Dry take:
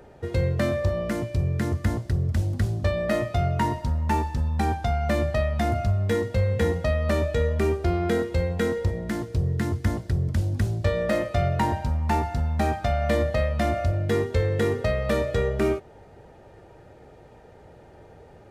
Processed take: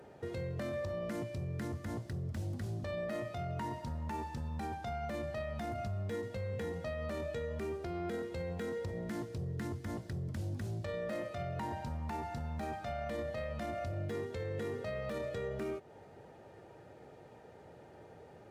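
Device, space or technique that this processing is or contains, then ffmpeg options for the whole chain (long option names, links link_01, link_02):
podcast mastering chain: -af "highpass=110,deesser=0.85,acompressor=threshold=-32dB:ratio=2,alimiter=level_in=2dB:limit=-24dB:level=0:latency=1:release=22,volume=-2dB,volume=-4.5dB" -ar 44100 -c:a libmp3lame -b:a 128k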